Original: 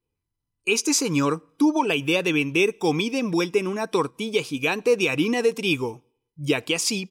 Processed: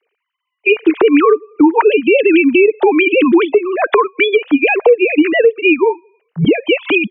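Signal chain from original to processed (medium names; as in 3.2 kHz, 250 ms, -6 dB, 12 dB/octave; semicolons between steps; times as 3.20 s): formants replaced by sine waves; 0.89–2.54 s: peaking EQ 430 Hz +9 dB 0.25 oct; compression 4:1, threshold -28 dBFS, peak gain reduction 15.5 dB; loudness maximiser +23 dB; tape noise reduction on one side only encoder only; trim -1 dB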